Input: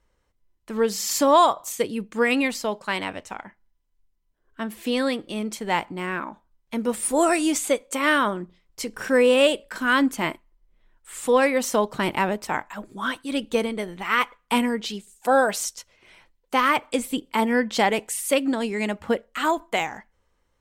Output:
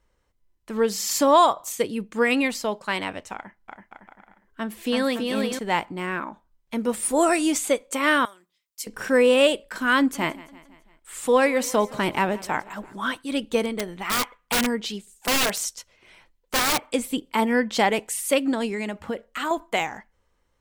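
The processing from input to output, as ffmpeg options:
-filter_complex "[0:a]asettb=1/sr,asplit=3[a][b][c];[a]atrim=end=3.354[d];[b]atrim=start=3.35:end=5.59,asetpts=PTS-STARTPTS,afade=t=in:d=0.004:c=qsin,afade=t=out:st=2.236:d=0.004:c=qsin,aecho=1:1:330|561|722.7|835.9|915.1|970.6:0.631|0.398|0.251|0.158|0.1|0.0631,atrim=end_sample=98784[e];[c]atrim=start=5.586[f];[d][e]acrossfade=d=0.004:c1=hsin:c2=qsin[g];[g][f]acrossfade=d=0.004:c1=qsin:c2=hsin,asettb=1/sr,asplit=3[h][i][j];[h]atrim=end=8.254[k];[i]atrim=start=8.25:end=8.87,asetpts=PTS-STARTPTS,afade=t=in:d=0.004:c=qsin,afade=t=out:st=0.616:d=0.004:c=qsin,aderivative[l];[j]atrim=start=8.866[m];[k][l]acrossfade=d=0.004:c1=hsin:c2=qsin[n];[n][m]acrossfade=d=0.004:c1=qsin:c2=hsin,asettb=1/sr,asplit=3[o][p][q];[o]atrim=end=9.984[r];[p]atrim=start=9.98:end=13.15,asetpts=PTS-STARTPTS,afade=t=in:d=0.004:c=qsin,afade=t=out:st=3.166:d=0.004:c=qsin,aecho=1:1:168|336|504|672:0.1|0.056|0.0314|0.0176,atrim=end_sample=139797[s];[q]atrim=start=13.146[t];[r][s]acrossfade=d=0.004:c1=hsin:c2=qsin[u];[u][t]acrossfade=d=0.004:c1=qsin:c2=hsin,asplit=3[v][w][x];[v]afade=t=out:st=13.65:d=0.02[y];[w]aeval=exprs='(mod(6.31*val(0)+1,2)-1)/6.31':c=same,afade=t=in:st=13.65:d=0.02,afade=t=out:st=16.85:d=0.02[z];[x]afade=t=in:st=16.85:d=0.02[aa];[y][z][aa]amix=inputs=3:normalize=0,asettb=1/sr,asplit=3[ab][ac][ad];[ab]atrim=end=18.744[ae];[ac]atrim=start=18.74:end=19.51,asetpts=PTS-STARTPTS,afade=t=in:d=0.004:c=qsin,afade=t=out:st=0.766:d=0.004:c=qsin,acompressor=threshold=-25dB:ratio=3:attack=3.2:release=140:knee=1:detection=peak[af];[ad]atrim=start=19.506[ag];[ae][af]acrossfade=d=0.004:c1=hsin:c2=qsin[ah];[ah][ag]acrossfade=d=0.004:c1=qsin:c2=hsin"

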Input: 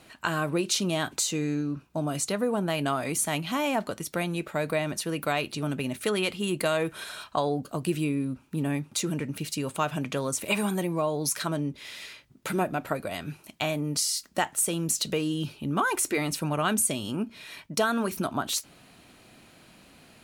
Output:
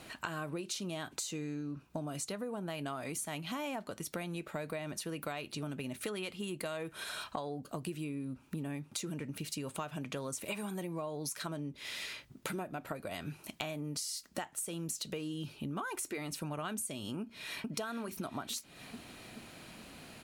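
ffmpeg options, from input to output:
-filter_complex "[0:a]asplit=2[a][b];[b]afade=t=in:st=17.21:d=0.01,afade=t=out:st=17.69:d=0.01,aecho=0:1:430|860|1290|1720|2150|2580|3010|3440:0.707946|0.38937|0.214154|0.117784|0.0647815|0.0356298|0.0195964|0.010778[c];[a][c]amix=inputs=2:normalize=0,acompressor=threshold=-40dB:ratio=6,volume=2.5dB"

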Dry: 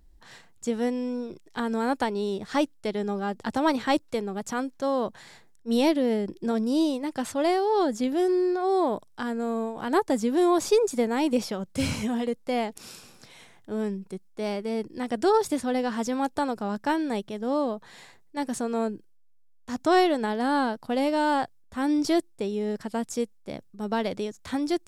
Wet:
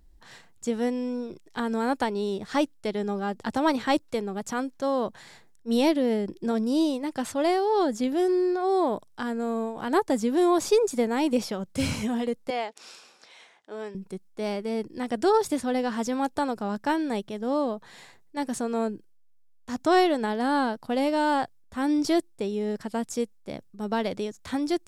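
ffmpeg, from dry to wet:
-filter_complex "[0:a]asettb=1/sr,asplit=3[a][b][c];[a]atrim=end=12.504[d];[b]atrim=start=12.5:end=13.95,asetpts=PTS-STARTPTS,afade=t=in:d=0.004:c=qsin,afade=t=out:st=1.446:d=0.004:c=qsin,highpass=510,lowpass=6.3k[e];[c]atrim=start=13.946[f];[d][e]acrossfade=d=0.004:c1=hsin:c2=qsin[g];[g][f]acrossfade=d=0.004:c1=qsin:c2=hsin"

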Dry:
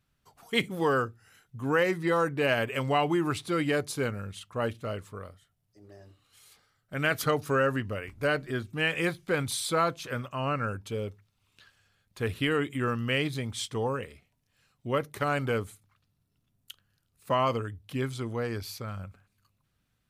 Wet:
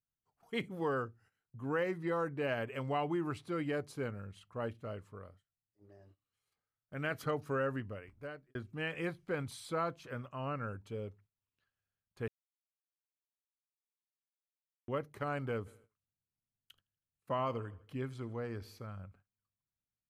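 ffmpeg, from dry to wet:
-filter_complex "[0:a]asplit=3[a][b][c];[a]afade=t=out:st=15.65:d=0.02[d];[b]aecho=1:1:80|160|240|320:0.0944|0.05|0.0265|0.0141,afade=t=in:st=15.65:d=0.02,afade=t=out:st=18.86:d=0.02[e];[c]afade=t=in:st=18.86:d=0.02[f];[d][e][f]amix=inputs=3:normalize=0,asplit=4[g][h][i][j];[g]atrim=end=8.55,asetpts=PTS-STARTPTS,afade=t=out:st=7.79:d=0.76[k];[h]atrim=start=8.55:end=12.28,asetpts=PTS-STARTPTS,afade=t=in:d=0.004:c=hsin,afade=t=out:st=3.726:d=0.004:c=hsin[l];[i]atrim=start=12.28:end=14.88,asetpts=PTS-STARTPTS,volume=0[m];[j]atrim=start=14.88,asetpts=PTS-STARTPTS,afade=t=in:d=0.004:c=hsin[n];[k][l][m][n]concat=n=4:v=0:a=1,bandreject=f=3.6k:w=17,agate=range=-15dB:threshold=-54dB:ratio=16:detection=peak,highshelf=f=2.8k:g=-11,volume=-8dB"

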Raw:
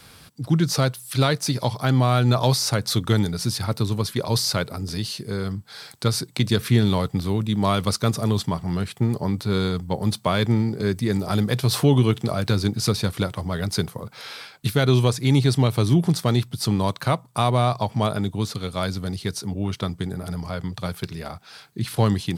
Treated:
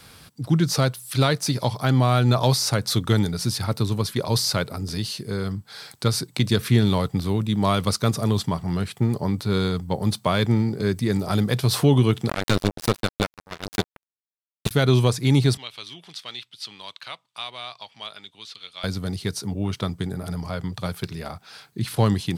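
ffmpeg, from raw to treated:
-filter_complex "[0:a]asettb=1/sr,asplit=3[a][b][c];[a]atrim=end=12.294[d];[b]atrim=start=12.29:end=14.71,asetpts=PTS-STARTPTS,afade=t=in:d=0.004:c=qsin,afade=t=out:st=2.416:d=0.004:c=qsin,acrusher=bits=2:mix=0:aa=0.5[e];[c]atrim=start=14.706[f];[d][e]acrossfade=d=0.004:c1=hsin:c2=qsin[g];[g][f]acrossfade=d=0.004:c1=qsin:c2=hsin,asettb=1/sr,asplit=3[h][i][j];[h]atrim=end=15.574[k];[i]atrim=start=15.57:end=18.84,asetpts=PTS-STARTPTS,afade=t=in:d=0.004:c=qsin,afade=t=out:st=3.266:d=0.004:c=qsin,bandpass=f=3.1k:t=q:w=2[l];[j]atrim=start=18.836[m];[k][l]acrossfade=d=0.004:c1=hsin:c2=qsin[n];[n][m]acrossfade=d=0.004:c1=qsin:c2=hsin"

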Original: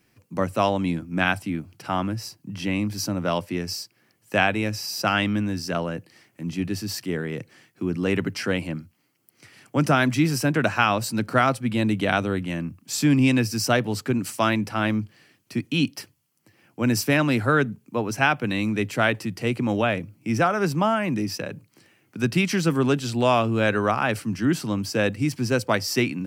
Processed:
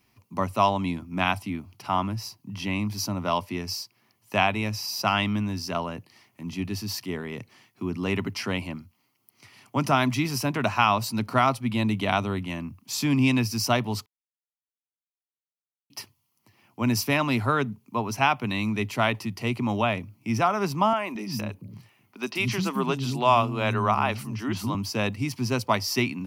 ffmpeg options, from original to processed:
-filter_complex "[0:a]asettb=1/sr,asplit=3[a][b][c];[a]atrim=end=20.934[d];[b]atrim=start=20.93:end=24.75,asetpts=PTS-STARTPTS,afade=t=in:d=0.004:c=qsin,afade=t=out:st=3.816:d=0.004:c=qsin,acrossover=split=260|5800[e][f][g];[g]adelay=30[h];[e]adelay=220[i];[i][f][h]amix=inputs=3:normalize=0,atrim=end_sample=168462[j];[c]atrim=start=24.746[k];[d][j]acrossfade=d=0.004:c1=hsin:c2=qsin[l];[l][k]acrossfade=d=0.004:c1=qsin:c2=hsin,asplit=3[m][n][o];[m]atrim=end=14.06,asetpts=PTS-STARTPTS,afade=t=out:st=14.056:d=0.004:c=hsin[p];[n]atrim=start=14.06:end=15.9,asetpts=PTS-STARTPTS,volume=0[q];[o]atrim=start=15.9,asetpts=PTS-STARTPTS,afade=t=in:d=0.004:c=hsin[r];[p][q][r]concat=n=3:v=0:a=1,equalizer=f=160:t=o:w=0.33:g=-8,equalizer=f=315:t=o:w=0.33:g=-7,equalizer=f=500:t=o:w=0.33:g=-10,equalizer=f=1k:t=o:w=0.33:g=7,equalizer=f=1.6k:t=o:w=0.33:g=-10,equalizer=f=8k:t=o:w=0.33:g=-8"

